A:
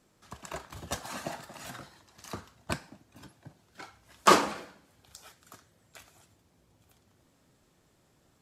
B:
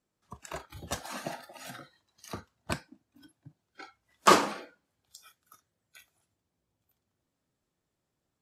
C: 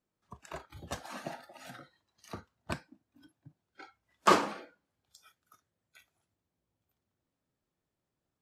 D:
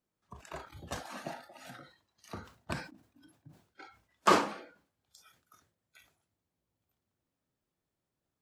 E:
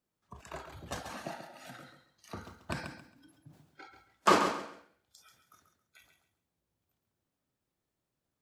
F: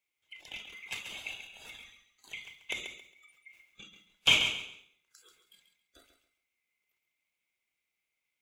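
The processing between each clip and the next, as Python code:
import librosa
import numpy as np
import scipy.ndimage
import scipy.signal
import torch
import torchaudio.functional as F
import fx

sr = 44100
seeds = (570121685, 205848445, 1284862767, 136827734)

y1 = fx.noise_reduce_blind(x, sr, reduce_db=16)
y2 = fx.high_shelf(y1, sr, hz=4700.0, db=-7.0)
y2 = F.gain(torch.from_numpy(y2), -3.0).numpy()
y3 = fx.sustainer(y2, sr, db_per_s=120.0)
y3 = F.gain(torch.from_numpy(y3), -1.0).numpy()
y4 = fx.echo_feedback(y3, sr, ms=136, feedback_pct=24, wet_db=-8.5)
y5 = fx.band_swap(y4, sr, width_hz=2000)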